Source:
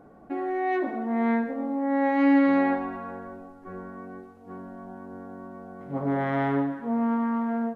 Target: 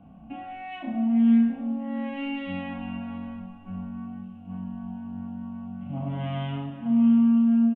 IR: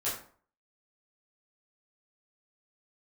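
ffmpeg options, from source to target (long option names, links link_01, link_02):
-filter_complex "[0:a]firequalizer=gain_entry='entry(130,0);entry(210,5);entry(380,-27);entry(670,-8);entry(1800,-19);entry(2800,9);entry(4200,-21)':delay=0.05:min_phase=1,acrossover=split=260|3000[link_01][link_02][link_03];[link_02]acompressor=threshold=-41dB:ratio=3[link_04];[link_01][link_04][link_03]amix=inputs=3:normalize=0,asplit=2[link_05][link_06];[link_06]adelay=31,volume=-3dB[link_07];[link_05][link_07]amix=inputs=2:normalize=0,aecho=1:1:657:0.168,asplit=2[link_08][link_09];[1:a]atrim=start_sample=2205,asetrate=39249,aresample=44100[link_10];[link_09][link_10]afir=irnorm=-1:irlink=0,volume=-10dB[link_11];[link_08][link_11]amix=inputs=2:normalize=0,volume=2.5dB"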